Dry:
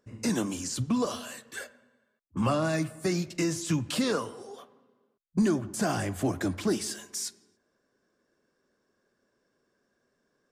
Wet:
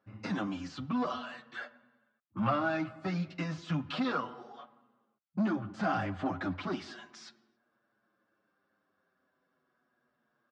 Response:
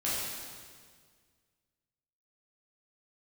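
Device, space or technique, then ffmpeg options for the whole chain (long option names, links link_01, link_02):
barber-pole flanger into a guitar amplifier: -filter_complex "[0:a]asplit=2[link_01][link_02];[link_02]adelay=7.1,afreqshift=-0.35[link_03];[link_01][link_03]amix=inputs=2:normalize=1,asoftclip=type=tanh:threshold=-24dB,highpass=100,equalizer=frequency=430:width_type=q:width=4:gain=-9,equalizer=frequency=770:width_type=q:width=4:gain=6,equalizer=frequency=1300:width_type=q:width=4:gain=9,lowpass=frequency=3900:width=0.5412,lowpass=frequency=3900:width=1.3066"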